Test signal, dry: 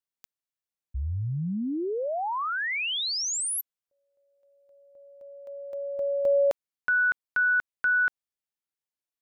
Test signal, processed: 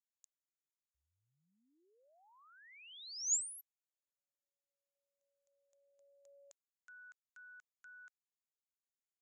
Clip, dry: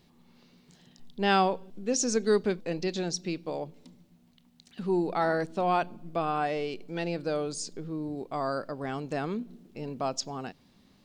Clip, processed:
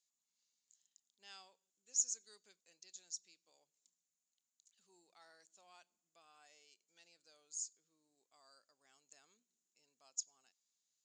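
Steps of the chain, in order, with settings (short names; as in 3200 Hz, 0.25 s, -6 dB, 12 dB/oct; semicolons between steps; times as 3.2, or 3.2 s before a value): band-pass 6900 Hz, Q 9.8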